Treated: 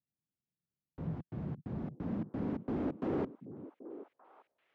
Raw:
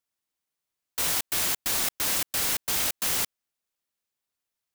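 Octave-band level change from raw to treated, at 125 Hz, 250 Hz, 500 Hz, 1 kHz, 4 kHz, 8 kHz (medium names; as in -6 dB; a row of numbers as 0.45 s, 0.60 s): +6.5 dB, +8.5 dB, +1.0 dB, -11.0 dB, under -35 dB, under -40 dB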